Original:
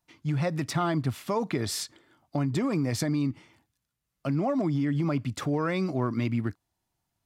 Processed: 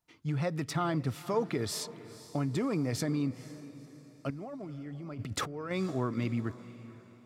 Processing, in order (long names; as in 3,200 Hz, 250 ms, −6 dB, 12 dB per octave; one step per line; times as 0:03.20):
0:04.30–0:05.71: compressor whose output falls as the input rises −36 dBFS, ratio −1
hollow resonant body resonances 450/1,300 Hz, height 6 dB
on a send: feedback delay with all-pass diffusion 488 ms, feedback 42%, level −16 dB
on the sum: level −4.5 dB